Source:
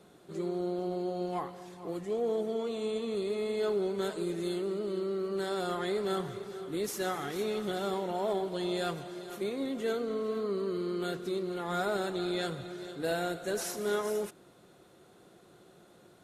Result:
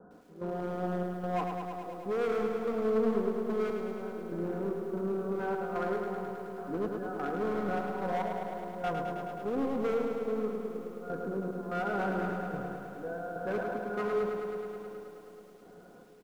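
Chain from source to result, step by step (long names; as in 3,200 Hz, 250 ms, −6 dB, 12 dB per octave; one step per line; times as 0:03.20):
Butterworth low-pass 1,600 Hz 96 dB per octave
notch filter 1,200 Hz, Q 13
comb filter 4.1 ms, depth 63%
0:09.94–0:11.99: downward compressor 2.5 to 1, threshold −34 dBFS, peak gain reduction 6.5 dB
gate pattern "x.xxx.x...x" 73 BPM −12 dB
hard clipping −31.5 dBFS, distortion −9 dB
feedback echo with a low-pass in the loop 393 ms, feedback 77%, low-pass 1,100 Hz, level −16.5 dB
feedback echo at a low word length 106 ms, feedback 80%, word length 11 bits, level −5.5 dB
level +2.5 dB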